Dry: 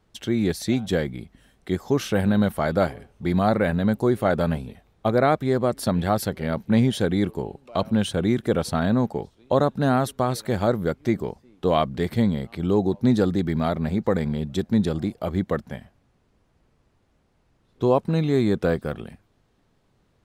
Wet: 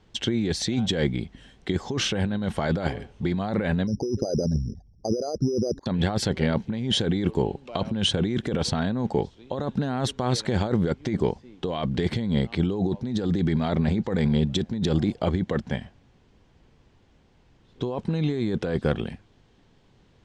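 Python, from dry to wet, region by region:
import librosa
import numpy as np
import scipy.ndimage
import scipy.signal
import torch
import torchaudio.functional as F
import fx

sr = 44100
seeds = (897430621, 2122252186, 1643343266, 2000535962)

y = fx.chain(x, sr, fx.envelope_sharpen(power=3.0),
    fx.gaussian_blur(sigma=3.7),
    fx.resample_bad(factor=8, down='none', up='hold'), at=(3.87, 5.86))
y = scipy.signal.sosfilt(scipy.signal.butter(4, 7300.0, 'lowpass', fs=sr, output='sos'), y)
y = fx.over_compress(y, sr, threshold_db=-26.0, ratio=-1.0)
y = fx.graphic_eq_31(y, sr, hz=(630, 1250, 3150), db=(-4, -5, 4))
y = y * librosa.db_to_amplitude(2.0)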